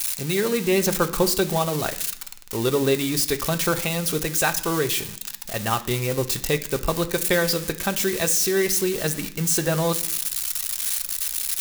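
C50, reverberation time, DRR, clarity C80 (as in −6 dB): 15.0 dB, 0.65 s, 6.0 dB, 18.5 dB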